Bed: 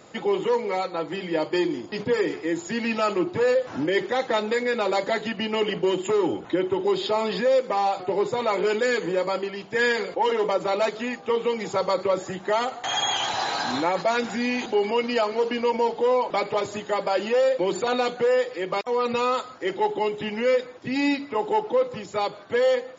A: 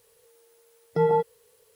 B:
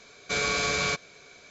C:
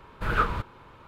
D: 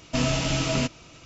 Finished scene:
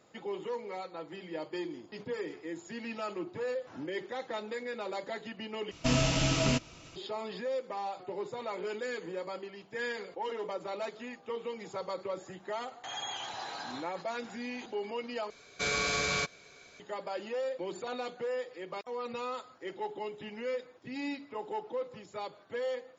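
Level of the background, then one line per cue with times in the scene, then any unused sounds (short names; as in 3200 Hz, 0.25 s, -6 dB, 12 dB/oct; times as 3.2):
bed -14 dB
5.71 replace with D -3 dB
15.3 replace with B -4 dB
not used: A, C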